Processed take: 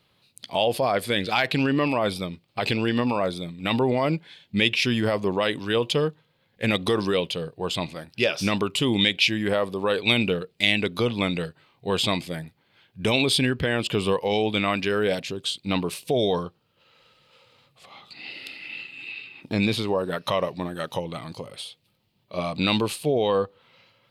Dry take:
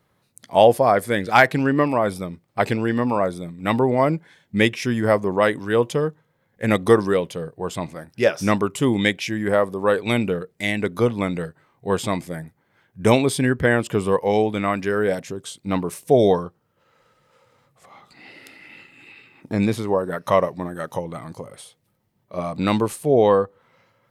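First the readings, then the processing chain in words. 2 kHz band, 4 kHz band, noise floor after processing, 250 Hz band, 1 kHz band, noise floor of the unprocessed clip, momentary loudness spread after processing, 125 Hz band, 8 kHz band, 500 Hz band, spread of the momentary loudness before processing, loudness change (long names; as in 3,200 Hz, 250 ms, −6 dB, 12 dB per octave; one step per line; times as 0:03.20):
−2.0 dB, +7.5 dB, −67 dBFS, −3.5 dB, −6.5 dB, −67 dBFS, 14 LU, −3.5 dB, −2.0 dB, −5.5 dB, 14 LU, −3.5 dB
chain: brickwall limiter −12.5 dBFS, peak gain reduction 11 dB
flat-topped bell 3,400 Hz +12.5 dB 1.2 octaves
level −1.5 dB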